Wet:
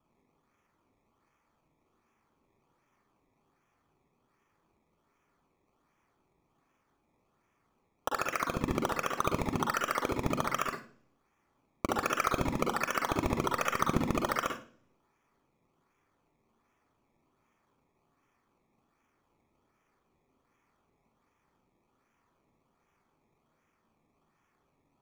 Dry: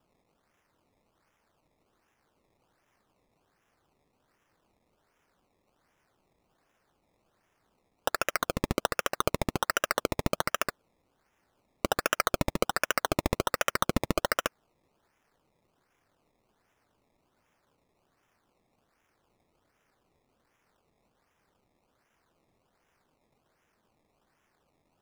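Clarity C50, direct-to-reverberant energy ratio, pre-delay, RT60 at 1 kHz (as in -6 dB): 5.0 dB, 1.5 dB, 40 ms, 0.40 s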